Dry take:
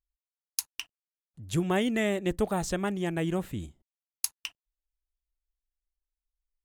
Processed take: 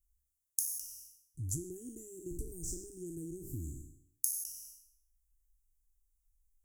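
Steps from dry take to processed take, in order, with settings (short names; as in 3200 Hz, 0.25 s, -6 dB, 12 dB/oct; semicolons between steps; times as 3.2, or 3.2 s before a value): spectral trails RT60 0.67 s; compressor 12:1, threshold -39 dBFS, peak gain reduction 18.5 dB; inverse Chebyshev band-stop 560–3800 Hz, stop band 40 dB; fixed phaser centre 490 Hz, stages 4; gain +10 dB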